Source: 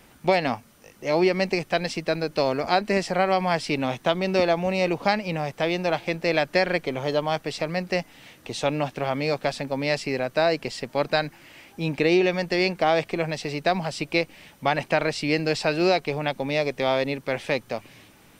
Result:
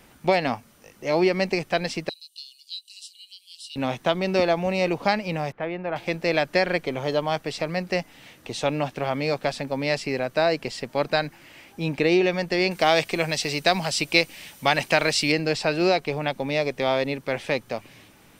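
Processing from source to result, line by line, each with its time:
2.09–3.76 s: rippled Chebyshev high-pass 2.8 kHz, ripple 9 dB
5.52–5.96 s: four-pole ladder low-pass 2.6 kHz, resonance 20%
12.71–15.32 s: treble shelf 2.5 kHz +12 dB

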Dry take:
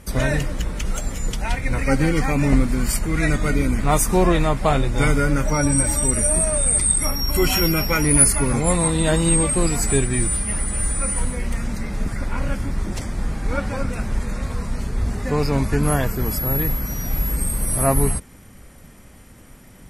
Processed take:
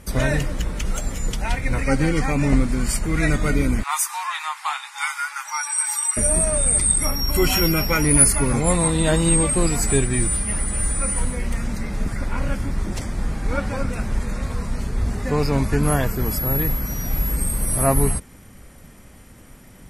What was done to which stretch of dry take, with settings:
1.81–3.05 s: Chebyshev low-pass 9.7 kHz
3.83–6.17 s: Chebyshev high-pass 840 Hz, order 6

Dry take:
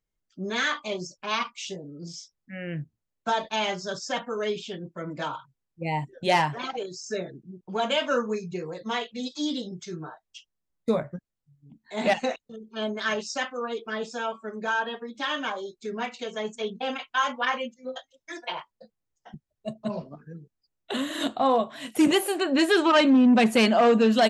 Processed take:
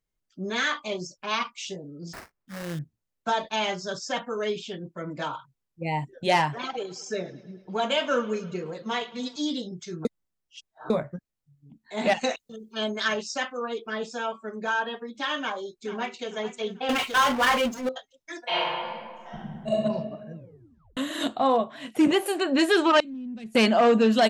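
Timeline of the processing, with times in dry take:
2.13–2.79 s: sample-rate reducer 3.4 kHz, jitter 20%
6.55–9.36 s: bucket-brigade echo 107 ms, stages 4096, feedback 65%, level -19.5 dB
10.05–10.90 s: reverse
12.21–13.08 s: treble shelf 3.2 kHz +10 dB
15.41–16.29 s: echo throw 440 ms, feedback 40%, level -12.5 dB
16.89–17.89 s: power-law waveshaper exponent 0.5
18.43–19.73 s: reverb throw, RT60 1.7 s, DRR -9.5 dB
20.35 s: tape stop 0.62 s
21.57–22.26 s: treble shelf 5.4 kHz -11.5 dB
23.00–23.55 s: amplifier tone stack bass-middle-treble 10-0-1

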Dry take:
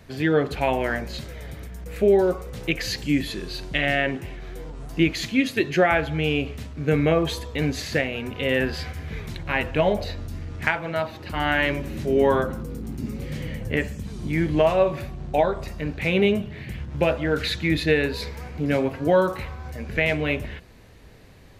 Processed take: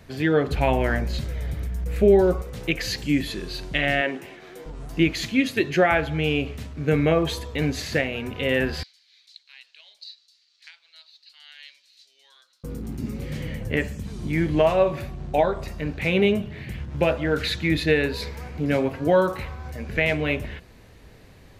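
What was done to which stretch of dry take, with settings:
0.47–2.42 s: bass shelf 150 Hz +11 dB
4.01–4.66 s: high-pass 260 Hz
8.83–12.64 s: ladder band-pass 4.6 kHz, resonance 70%

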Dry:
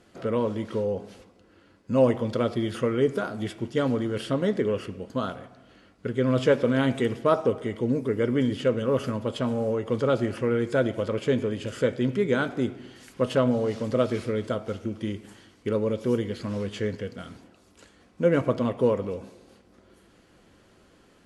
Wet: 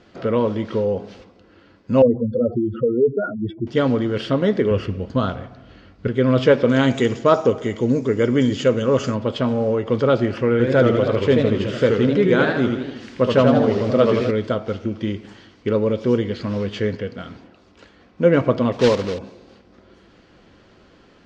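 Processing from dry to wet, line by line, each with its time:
2.02–3.67 s: spectral contrast enhancement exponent 3.1
4.71–6.08 s: peaking EQ 67 Hz +12.5 dB 1.8 oct
6.69–9.15 s: resonant low-pass 7 kHz, resonance Q 8.1
10.51–14.31 s: modulated delay 80 ms, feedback 57%, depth 176 cents, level -4 dB
16.97–18.22 s: tone controls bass -1 dB, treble -4 dB
18.72–19.20 s: block-companded coder 3-bit
whole clip: low-pass 5.6 kHz 24 dB/octave; trim +6.5 dB

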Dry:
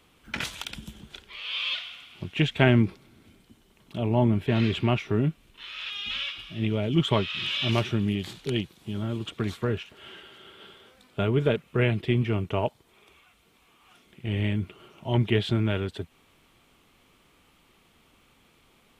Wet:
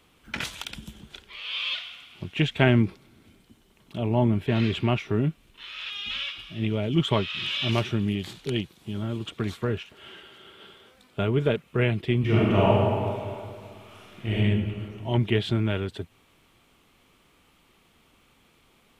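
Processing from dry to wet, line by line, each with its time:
12.20–14.34 s: reverb throw, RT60 2.2 s, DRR -7.5 dB

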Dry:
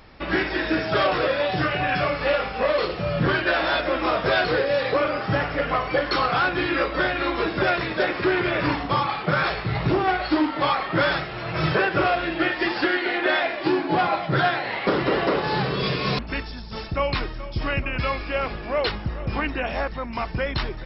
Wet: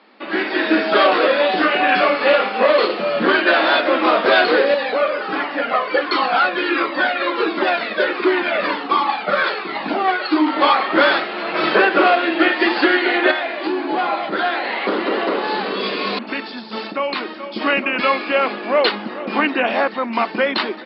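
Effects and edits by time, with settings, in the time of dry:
4.74–10.47 s: Shepard-style flanger falling 1.4 Hz
13.31–17.55 s: compression 2:1, threshold -31 dBFS
whole clip: Chebyshev band-pass 210–4600 Hz, order 5; level rider gain up to 10 dB

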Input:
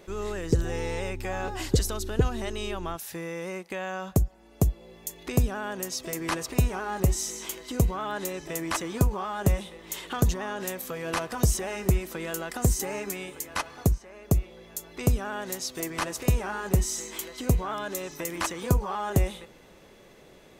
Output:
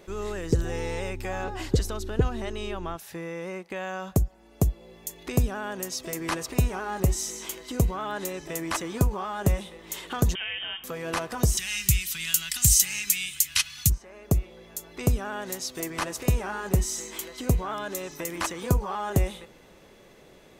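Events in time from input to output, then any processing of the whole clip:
1.44–3.76 s: treble shelf 5 kHz -8 dB
10.35–10.84 s: frequency inversion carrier 3.4 kHz
11.57–13.90 s: FFT filter 140 Hz 0 dB, 210 Hz -10 dB, 510 Hz -30 dB, 2.9 kHz +13 dB

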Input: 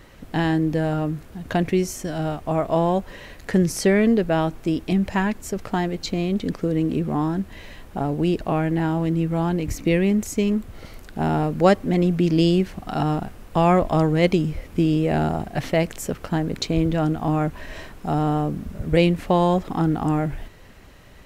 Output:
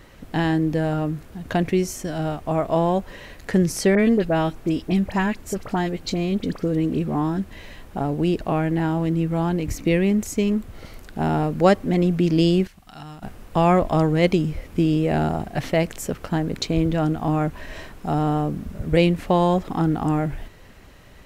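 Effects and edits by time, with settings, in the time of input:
3.95–7.51 s: phase dispersion highs, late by 41 ms, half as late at 2.1 kHz
12.67–13.23 s: amplifier tone stack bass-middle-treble 5-5-5

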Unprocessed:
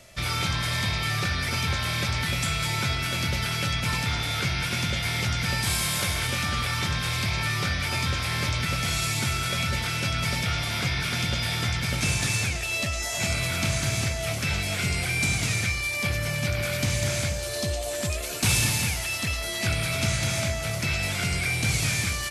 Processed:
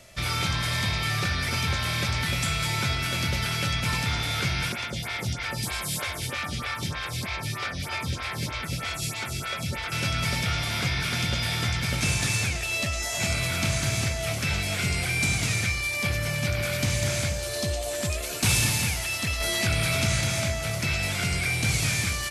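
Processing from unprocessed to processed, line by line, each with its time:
4.72–9.92 s: lamp-driven phase shifter 3.2 Hz
19.40–20.21 s: level flattener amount 50%

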